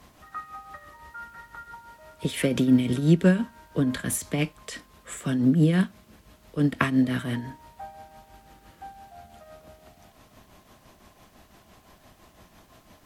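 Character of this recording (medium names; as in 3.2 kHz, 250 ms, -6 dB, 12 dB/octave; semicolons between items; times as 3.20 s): tremolo triangle 5.9 Hz, depth 65%; a quantiser's noise floor 12-bit, dither triangular; SBC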